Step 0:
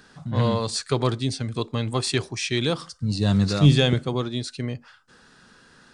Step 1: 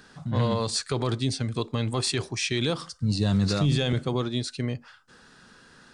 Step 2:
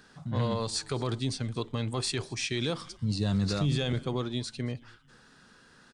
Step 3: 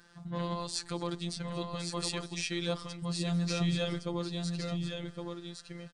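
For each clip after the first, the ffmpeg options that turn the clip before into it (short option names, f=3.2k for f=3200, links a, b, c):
-af "alimiter=limit=-15dB:level=0:latency=1:release=37"
-filter_complex "[0:a]asplit=4[a][b][c][d];[b]adelay=225,afreqshift=-130,volume=-23dB[e];[c]adelay=450,afreqshift=-260,volume=-30.5dB[f];[d]adelay=675,afreqshift=-390,volume=-38.1dB[g];[a][e][f][g]amix=inputs=4:normalize=0,volume=-4.5dB"
-af "afftfilt=real='hypot(re,im)*cos(PI*b)':imag='0':win_size=1024:overlap=0.75,aecho=1:1:1113:0.562"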